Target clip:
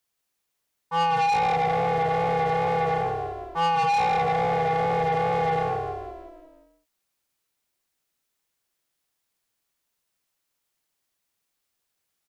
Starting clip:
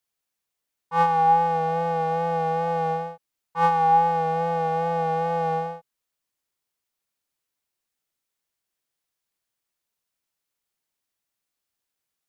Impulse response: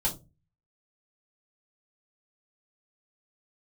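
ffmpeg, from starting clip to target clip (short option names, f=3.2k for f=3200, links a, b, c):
-filter_complex "[0:a]asplit=2[a][b];[b]asplit=6[c][d][e][f][g][h];[c]adelay=174,afreqshift=-34,volume=-6dB[i];[d]adelay=348,afreqshift=-68,volume=-12dB[j];[e]adelay=522,afreqshift=-102,volume=-18dB[k];[f]adelay=696,afreqshift=-136,volume=-24.1dB[l];[g]adelay=870,afreqshift=-170,volume=-30.1dB[m];[h]adelay=1044,afreqshift=-204,volume=-36.1dB[n];[i][j][k][l][m][n]amix=inputs=6:normalize=0[o];[a][o]amix=inputs=2:normalize=0,asoftclip=type=tanh:threshold=-23.5dB,volume=3.5dB"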